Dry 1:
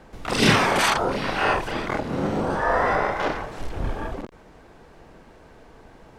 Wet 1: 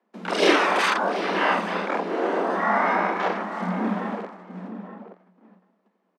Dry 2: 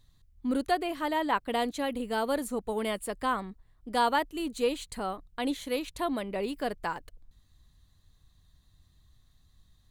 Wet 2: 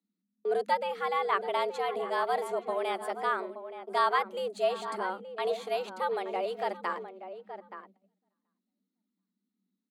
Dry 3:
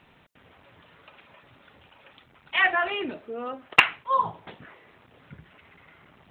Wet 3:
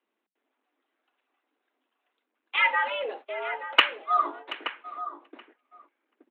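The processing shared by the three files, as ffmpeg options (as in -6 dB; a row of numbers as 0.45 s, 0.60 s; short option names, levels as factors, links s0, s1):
-filter_complex "[0:a]asplit=2[s0][s1];[s1]aecho=0:1:729|1458:0.126|0.0239[s2];[s0][s2]amix=inputs=2:normalize=0,agate=range=0.0631:threshold=0.00794:ratio=16:detection=peak,afreqshift=180,aemphasis=mode=reproduction:type=50kf,asplit=2[s3][s4];[s4]adelay=874.6,volume=0.316,highshelf=f=4000:g=-19.7[s5];[s3][s5]amix=inputs=2:normalize=0"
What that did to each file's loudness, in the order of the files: 0.0 LU, 0.0 LU, -2.5 LU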